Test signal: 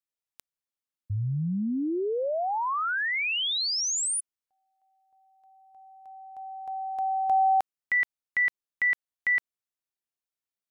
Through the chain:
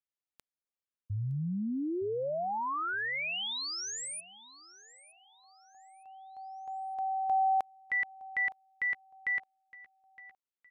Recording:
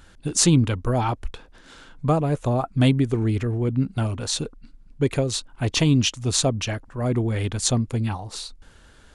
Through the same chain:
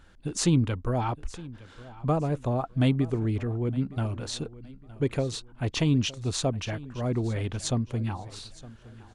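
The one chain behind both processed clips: treble shelf 4.8 kHz -8.5 dB; on a send: feedback delay 914 ms, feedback 33%, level -19 dB; on the sum: trim -5 dB

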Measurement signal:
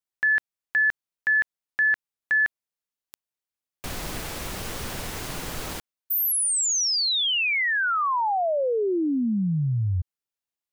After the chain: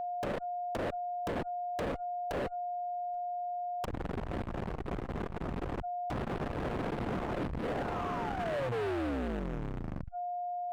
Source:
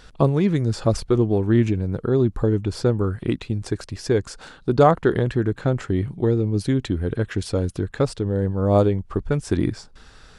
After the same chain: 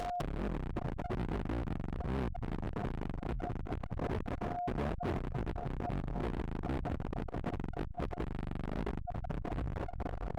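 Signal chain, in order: octave divider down 2 oct, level +1 dB; treble shelf 3.9 kHz +8.5 dB; band-stop 490 Hz, Q 12; reverse; compression 5:1, threshold -30 dBFS; reverse; sample-rate reducer 2.3 kHz, jitter 20%; in parallel at -4 dB: fuzz box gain 47 dB, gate -51 dBFS; on the sum: low-pass that closes with the level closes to 430 Hz, closed at -20 dBFS; whistle 710 Hz -31 dBFS; hard clipper -29 dBFS; transformer saturation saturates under 68 Hz; trim -2.5 dB

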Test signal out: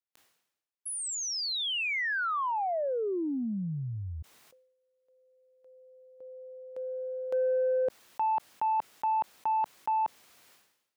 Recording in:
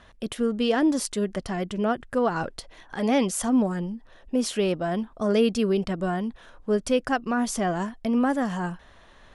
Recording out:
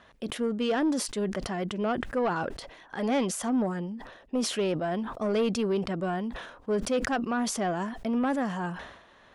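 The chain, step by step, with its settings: high-pass 190 Hz 6 dB/octave; treble shelf 5.2 kHz -7.5 dB; saturation -19 dBFS; decay stretcher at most 68 dB/s; trim -1 dB

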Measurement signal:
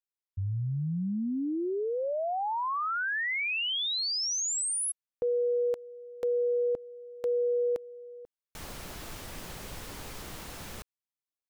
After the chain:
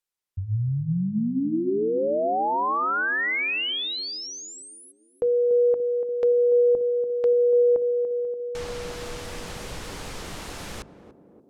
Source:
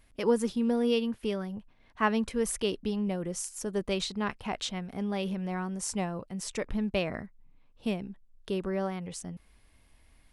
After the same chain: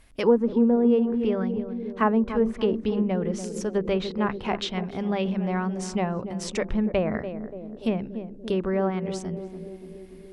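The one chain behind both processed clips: hum notches 50/100/150/200/250/300/350 Hz; band-passed feedback delay 289 ms, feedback 73%, band-pass 310 Hz, level -8 dB; low-pass that closes with the level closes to 970 Hz, closed at -24 dBFS; trim +6.5 dB

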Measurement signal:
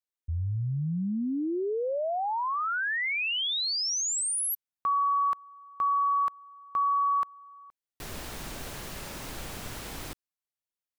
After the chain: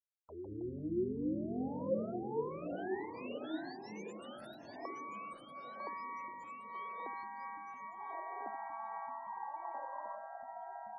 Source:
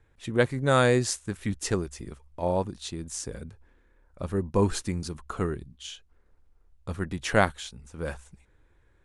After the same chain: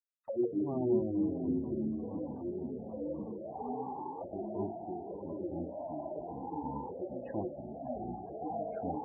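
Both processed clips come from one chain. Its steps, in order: comb filter that takes the minimum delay 1.1 ms; crossover distortion -40.5 dBFS; on a send: echo that smears into a reverb 680 ms, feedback 56%, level -8 dB; on the sum: gate -47 dBFS, range -22 dB; auto-wah 360–1300 Hz, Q 20, down, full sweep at -30.5 dBFS; flutter echo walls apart 8.4 m, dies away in 0.26 s; in parallel at -2 dB: compression 6:1, threshold -60 dBFS; on the sum: spectral gate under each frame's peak -20 dB strong; spectral noise reduction 6 dB; tilt shelf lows -5 dB, about 850 Hz; ever faster or slower copies 100 ms, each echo -3 st, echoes 3; bass shelf 350 Hz +4.5 dB; trim +13.5 dB

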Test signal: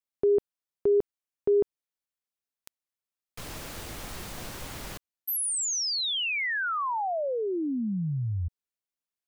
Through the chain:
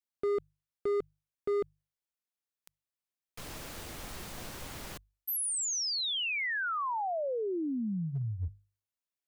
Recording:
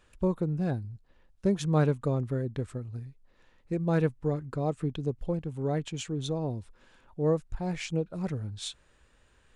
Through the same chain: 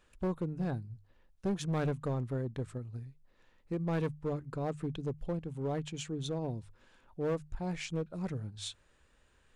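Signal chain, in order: hum notches 50/100/150 Hz; in parallel at -4 dB: wavefolder -25.5 dBFS; on the sum: trim -8 dB

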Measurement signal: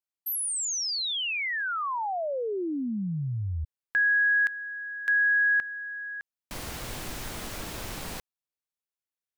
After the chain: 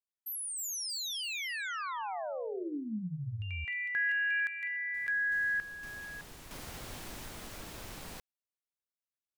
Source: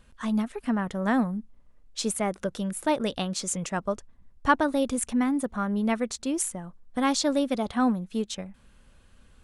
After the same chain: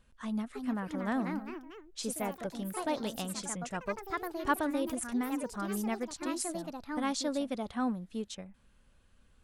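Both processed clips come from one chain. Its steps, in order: ever faster or slower copies 357 ms, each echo +3 st, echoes 3, each echo -6 dB; trim -8.5 dB

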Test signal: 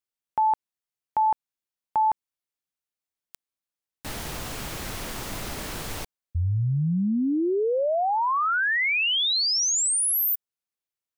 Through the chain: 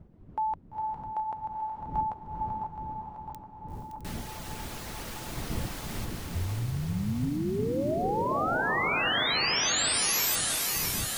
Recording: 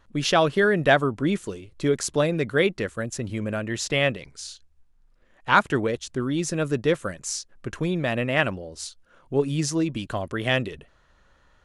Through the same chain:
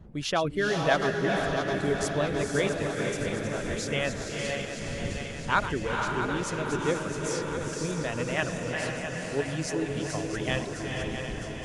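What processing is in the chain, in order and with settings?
backward echo that repeats 330 ms, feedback 80%, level -7 dB; wind noise 180 Hz -36 dBFS; reverb removal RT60 0.58 s; echo that smears into a reverb 460 ms, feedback 50%, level -3.5 dB; trim -7 dB

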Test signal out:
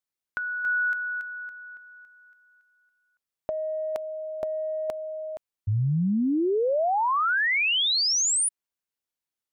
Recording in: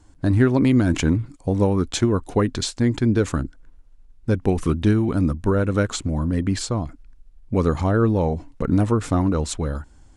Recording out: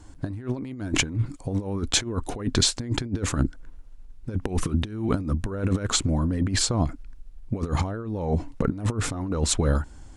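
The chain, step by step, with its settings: compressor with a negative ratio -24 dBFS, ratio -0.5

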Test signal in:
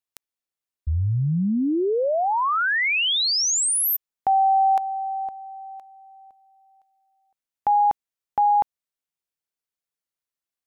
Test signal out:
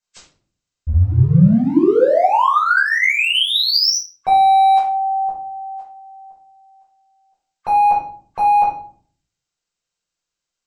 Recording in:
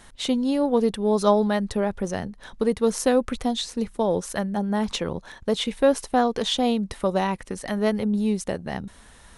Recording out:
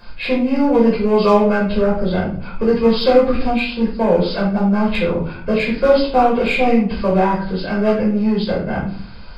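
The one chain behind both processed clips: knee-point frequency compression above 1.1 kHz 1.5:1; in parallel at -11.5 dB: wavefolder -23.5 dBFS; on the sum: simulated room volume 500 m³, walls furnished, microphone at 5.3 m; trim -1.5 dB

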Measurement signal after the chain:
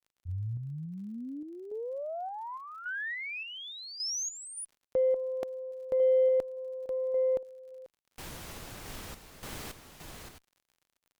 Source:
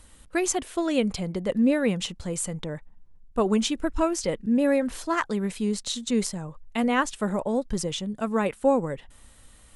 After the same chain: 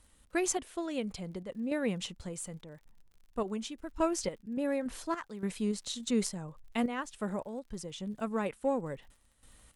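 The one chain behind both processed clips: random-step tremolo, depth 75%; crackle 57 per s -48 dBFS; Chebyshev shaper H 8 -40 dB, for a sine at -11.5 dBFS; trim -5 dB

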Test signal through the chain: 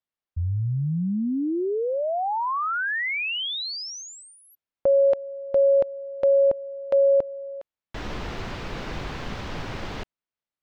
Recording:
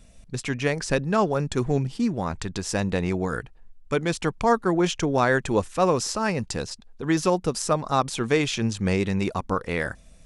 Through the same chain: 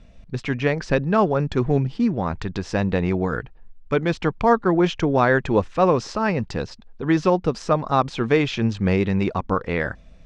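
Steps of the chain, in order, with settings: distance through air 200 m; trim +4 dB

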